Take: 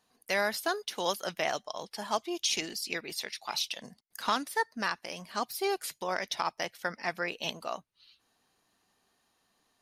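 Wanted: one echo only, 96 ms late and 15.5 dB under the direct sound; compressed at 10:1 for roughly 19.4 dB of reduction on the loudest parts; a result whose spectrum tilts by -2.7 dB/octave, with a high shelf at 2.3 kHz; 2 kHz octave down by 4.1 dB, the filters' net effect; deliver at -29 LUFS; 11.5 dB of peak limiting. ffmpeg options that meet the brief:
-af "equalizer=f=2000:t=o:g=-7,highshelf=f=2300:g=3.5,acompressor=threshold=0.00562:ratio=10,alimiter=level_in=5.01:limit=0.0631:level=0:latency=1,volume=0.2,aecho=1:1:96:0.168,volume=11.9"

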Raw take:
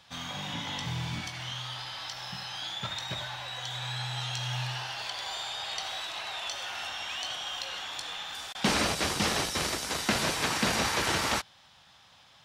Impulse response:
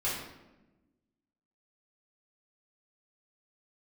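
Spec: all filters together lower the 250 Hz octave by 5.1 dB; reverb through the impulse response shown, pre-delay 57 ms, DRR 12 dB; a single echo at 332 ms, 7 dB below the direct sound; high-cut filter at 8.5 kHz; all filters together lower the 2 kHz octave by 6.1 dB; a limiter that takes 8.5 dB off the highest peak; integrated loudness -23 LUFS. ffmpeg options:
-filter_complex "[0:a]lowpass=8500,equalizer=f=250:t=o:g=-7,equalizer=f=2000:t=o:g=-8,alimiter=limit=0.0631:level=0:latency=1,aecho=1:1:332:0.447,asplit=2[s0][s1];[1:a]atrim=start_sample=2205,adelay=57[s2];[s1][s2]afir=irnorm=-1:irlink=0,volume=0.112[s3];[s0][s3]amix=inputs=2:normalize=0,volume=3.98"

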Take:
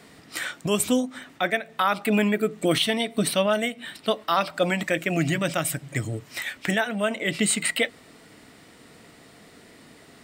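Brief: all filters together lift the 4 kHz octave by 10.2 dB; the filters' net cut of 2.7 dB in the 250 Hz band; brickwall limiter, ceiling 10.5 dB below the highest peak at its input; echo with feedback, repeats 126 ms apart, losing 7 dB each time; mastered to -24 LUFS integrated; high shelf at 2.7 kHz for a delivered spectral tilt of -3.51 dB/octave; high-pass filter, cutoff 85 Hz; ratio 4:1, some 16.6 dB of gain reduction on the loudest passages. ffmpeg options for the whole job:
-af "highpass=85,equalizer=f=250:t=o:g=-3.5,highshelf=f=2700:g=6.5,equalizer=f=4000:t=o:g=8,acompressor=threshold=0.0251:ratio=4,alimiter=limit=0.0631:level=0:latency=1,aecho=1:1:126|252|378|504|630:0.447|0.201|0.0905|0.0407|0.0183,volume=3.76"

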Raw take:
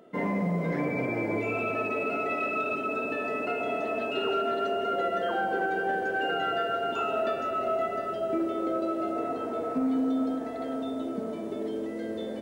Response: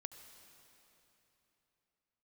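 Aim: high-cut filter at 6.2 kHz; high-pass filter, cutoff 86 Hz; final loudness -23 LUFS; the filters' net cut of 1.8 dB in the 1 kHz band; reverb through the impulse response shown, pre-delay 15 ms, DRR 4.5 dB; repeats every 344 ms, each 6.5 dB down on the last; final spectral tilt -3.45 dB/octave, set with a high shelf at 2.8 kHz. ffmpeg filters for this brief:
-filter_complex "[0:a]highpass=86,lowpass=6200,equalizer=f=1000:t=o:g=-4.5,highshelf=f=2800:g=7,aecho=1:1:344|688|1032|1376|1720|2064:0.473|0.222|0.105|0.0491|0.0231|0.0109,asplit=2[s0][s1];[1:a]atrim=start_sample=2205,adelay=15[s2];[s1][s2]afir=irnorm=-1:irlink=0,volume=1[s3];[s0][s3]amix=inputs=2:normalize=0,volume=1.58"

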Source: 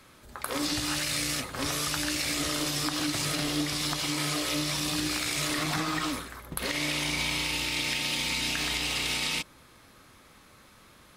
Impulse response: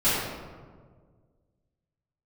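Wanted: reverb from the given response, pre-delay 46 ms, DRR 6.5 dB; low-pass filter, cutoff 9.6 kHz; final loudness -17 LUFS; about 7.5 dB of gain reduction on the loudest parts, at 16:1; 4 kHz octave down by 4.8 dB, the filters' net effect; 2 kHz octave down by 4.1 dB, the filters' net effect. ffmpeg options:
-filter_complex "[0:a]lowpass=9600,equalizer=f=2000:t=o:g=-3.5,equalizer=f=4000:t=o:g=-5,acompressor=threshold=0.02:ratio=16,asplit=2[s0][s1];[1:a]atrim=start_sample=2205,adelay=46[s2];[s1][s2]afir=irnorm=-1:irlink=0,volume=0.0794[s3];[s0][s3]amix=inputs=2:normalize=0,volume=9.44"

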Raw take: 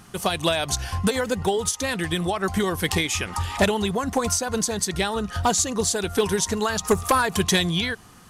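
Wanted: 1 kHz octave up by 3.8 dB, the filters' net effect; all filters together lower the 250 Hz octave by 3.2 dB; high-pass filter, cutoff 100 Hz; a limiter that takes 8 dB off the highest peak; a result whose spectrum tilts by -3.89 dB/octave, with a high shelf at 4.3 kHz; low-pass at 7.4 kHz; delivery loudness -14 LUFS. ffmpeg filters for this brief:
-af "highpass=100,lowpass=7400,equalizer=f=250:t=o:g=-4.5,equalizer=f=1000:t=o:g=5.5,highshelf=f=4300:g=-8.5,volume=3.98,alimiter=limit=0.794:level=0:latency=1"

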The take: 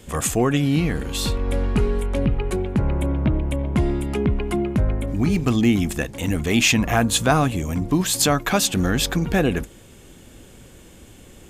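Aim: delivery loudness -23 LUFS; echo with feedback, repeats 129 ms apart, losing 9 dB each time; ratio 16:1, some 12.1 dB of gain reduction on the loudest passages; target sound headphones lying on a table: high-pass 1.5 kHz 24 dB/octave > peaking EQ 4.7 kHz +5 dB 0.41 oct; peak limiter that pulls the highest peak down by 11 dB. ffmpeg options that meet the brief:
-af "acompressor=threshold=0.0501:ratio=16,alimiter=limit=0.0631:level=0:latency=1,highpass=f=1500:w=0.5412,highpass=f=1500:w=1.3066,equalizer=f=4700:t=o:w=0.41:g=5,aecho=1:1:129|258|387|516:0.355|0.124|0.0435|0.0152,volume=6.31"

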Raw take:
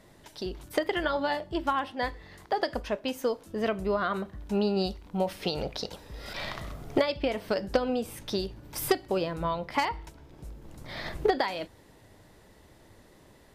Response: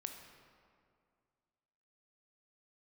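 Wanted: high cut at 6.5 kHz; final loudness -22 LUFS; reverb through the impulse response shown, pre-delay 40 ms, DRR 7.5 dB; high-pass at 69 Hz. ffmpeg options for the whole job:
-filter_complex "[0:a]highpass=69,lowpass=6500,asplit=2[s0][s1];[1:a]atrim=start_sample=2205,adelay=40[s2];[s1][s2]afir=irnorm=-1:irlink=0,volume=0.562[s3];[s0][s3]amix=inputs=2:normalize=0,volume=2.51"

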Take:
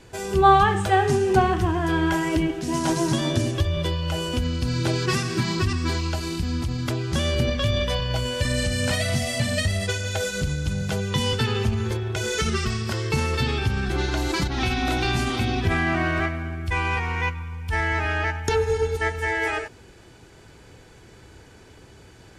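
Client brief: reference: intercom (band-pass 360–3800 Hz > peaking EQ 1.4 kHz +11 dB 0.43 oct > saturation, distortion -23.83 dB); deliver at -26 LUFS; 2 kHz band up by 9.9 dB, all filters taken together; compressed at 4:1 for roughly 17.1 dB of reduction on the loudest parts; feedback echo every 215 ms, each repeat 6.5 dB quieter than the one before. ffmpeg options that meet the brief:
-af "equalizer=f=2000:t=o:g=7,acompressor=threshold=0.0282:ratio=4,highpass=360,lowpass=3800,equalizer=f=1400:t=o:w=0.43:g=11,aecho=1:1:215|430|645|860|1075|1290:0.473|0.222|0.105|0.0491|0.0231|0.0109,asoftclip=threshold=0.112,volume=1.78"

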